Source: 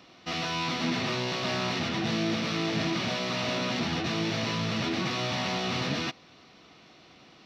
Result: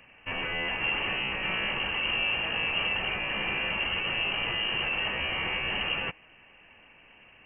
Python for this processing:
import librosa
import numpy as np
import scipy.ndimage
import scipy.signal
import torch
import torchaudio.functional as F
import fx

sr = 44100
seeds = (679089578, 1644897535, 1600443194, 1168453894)

y = fx.freq_invert(x, sr, carrier_hz=3000)